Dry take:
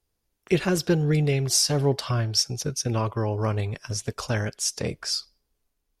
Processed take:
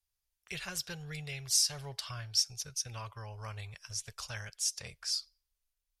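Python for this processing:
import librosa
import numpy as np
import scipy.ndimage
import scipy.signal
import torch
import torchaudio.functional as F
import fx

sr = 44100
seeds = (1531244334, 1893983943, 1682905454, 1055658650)

y = fx.tone_stack(x, sr, knobs='10-0-10')
y = y * 10.0 ** (-5.0 / 20.0)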